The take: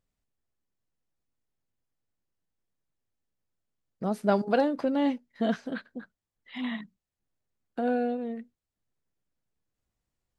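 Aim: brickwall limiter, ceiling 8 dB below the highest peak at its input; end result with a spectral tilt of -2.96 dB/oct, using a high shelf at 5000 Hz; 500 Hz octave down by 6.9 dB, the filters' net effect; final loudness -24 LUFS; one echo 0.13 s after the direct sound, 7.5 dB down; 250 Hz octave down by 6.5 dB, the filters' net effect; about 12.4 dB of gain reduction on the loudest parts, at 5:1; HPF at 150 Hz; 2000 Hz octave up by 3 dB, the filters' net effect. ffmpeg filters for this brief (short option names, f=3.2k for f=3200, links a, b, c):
-af "highpass=150,equalizer=f=250:t=o:g=-5,equalizer=f=500:t=o:g=-7.5,equalizer=f=2k:t=o:g=4,highshelf=f=5k:g=5.5,acompressor=threshold=-37dB:ratio=5,alimiter=level_in=8dB:limit=-24dB:level=0:latency=1,volume=-8dB,aecho=1:1:130:0.422,volume=19dB"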